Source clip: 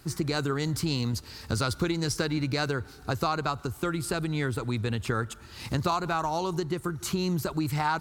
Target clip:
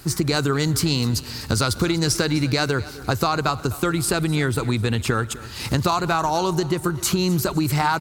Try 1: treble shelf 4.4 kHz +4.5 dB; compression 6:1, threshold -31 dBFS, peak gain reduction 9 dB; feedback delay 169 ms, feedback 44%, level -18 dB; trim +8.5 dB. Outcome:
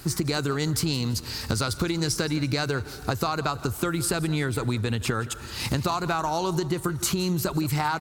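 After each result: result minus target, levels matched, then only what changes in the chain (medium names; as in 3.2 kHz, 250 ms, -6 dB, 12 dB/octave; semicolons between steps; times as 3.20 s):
echo 85 ms early; compression: peak gain reduction +6 dB
change: feedback delay 254 ms, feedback 44%, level -18 dB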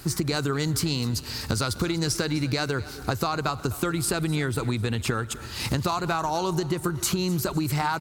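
compression: peak gain reduction +6 dB
change: compression 6:1, threshold -24 dBFS, peak gain reduction 3 dB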